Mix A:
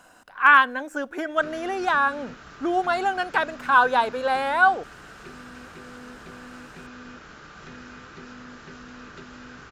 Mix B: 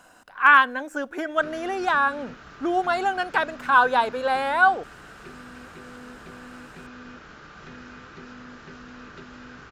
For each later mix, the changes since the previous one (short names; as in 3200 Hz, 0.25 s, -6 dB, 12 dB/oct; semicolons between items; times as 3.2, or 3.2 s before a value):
background: add air absorption 55 m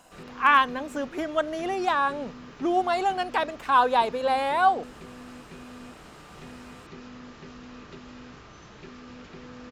background: entry -1.25 s; master: add bell 1500 Hz -10.5 dB 0.39 oct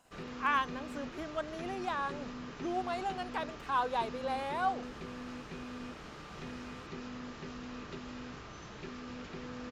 speech -11.5 dB